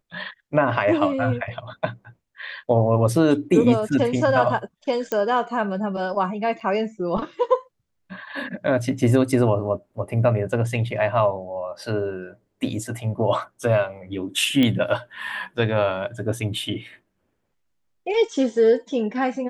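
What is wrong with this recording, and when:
5.12 pop -11 dBFS
6.6–6.61 gap 6 ms
14.63 pop -10 dBFS

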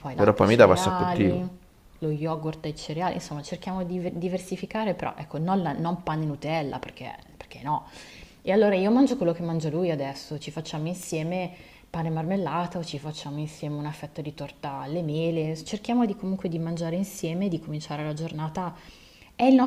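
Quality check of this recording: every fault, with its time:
11.03 pop

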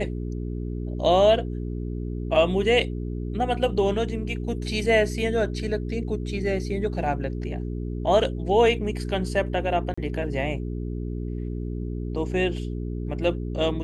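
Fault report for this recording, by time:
hum 60 Hz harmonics 7 -30 dBFS
9.94–9.97 gap 35 ms

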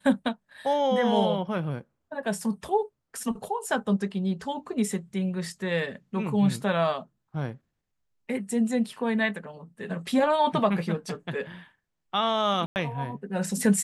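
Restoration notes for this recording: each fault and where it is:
12.66–12.76 gap 99 ms

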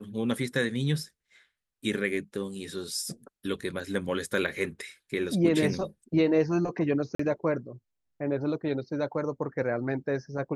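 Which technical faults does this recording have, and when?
7.15–7.19 gap 44 ms

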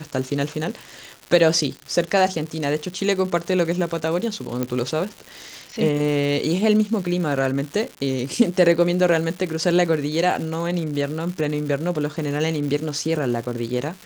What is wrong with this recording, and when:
crackle 260/s -29 dBFS
4.63 pop -10 dBFS

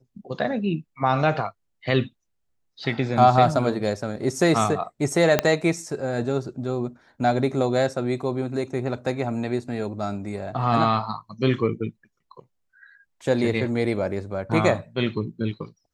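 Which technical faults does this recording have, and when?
5.39 pop -3 dBFS

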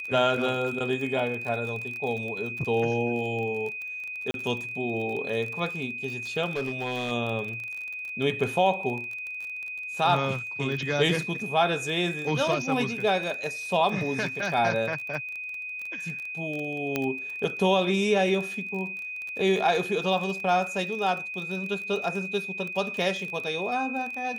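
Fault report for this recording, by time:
crackle 27/s -32 dBFS
tone 2500 Hz -33 dBFS
4.31–4.34 gap 32 ms
6.45–7.12 clipped -25 dBFS
16.96 pop -12 dBFS

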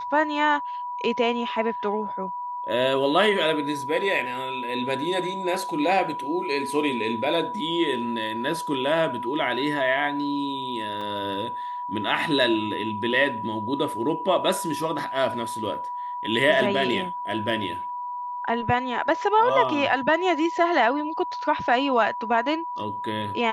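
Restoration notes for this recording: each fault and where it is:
tone 980 Hz -29 dBFS
11.01 gap 3.4 ms

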